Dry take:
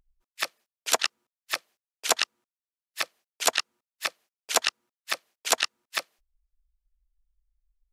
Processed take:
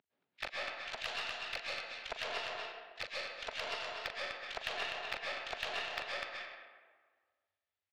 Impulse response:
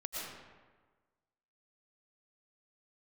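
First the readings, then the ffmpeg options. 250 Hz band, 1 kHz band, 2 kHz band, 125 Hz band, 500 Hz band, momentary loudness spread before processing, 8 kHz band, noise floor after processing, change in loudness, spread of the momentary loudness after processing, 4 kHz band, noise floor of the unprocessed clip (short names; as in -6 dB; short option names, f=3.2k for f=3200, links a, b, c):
-10.0 dB, -9.5 dB, -6.5 dB, n/a, -7.5 dB, 8 LU, -26.0 dB, under -85 dBFS, -11.0 dB, 6 LU, -10.5 dB, under -85 dBFS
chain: -filter_complex "[0:a]tremolo=f=49:d=0.788,aecho=1:1:42|250:0.141|0.178,alimiter=limit=-15.5dB:level=0:latency=1:release=416,areverse,acompressor=threshold=-41dB:ratio=10,areverse,highpass=f=210:w=0.5412,highpass=f=210:w=1.3066,equalizer=f=210:t=q:w=4:g=-7,equalizer=f=320:t=q:w=4:g=-9,equalizer=f=510:t=q:w=4:g=-5,equalizer=f=1.1k:t=q:w=4:g=-7,lowpass=f=4k:w=0.5412,lowpass=f=4k:w=1.3066[a];[1:a]atrim=start_sample=2205,asetrate=38367,aresample=44100[b];[a][b]afir=irnorm=-1:irlink=0,aeval=exprs='0.0251*(cos(1*acos(clip(val(0)/0.0251,-1,1)))-cos(1*PI/2))+0.00158*(cos(6*acos(clip(val(0)/0.0251,-1,1)))-cos(6*PI/2))':c=same,volume=8.5dB"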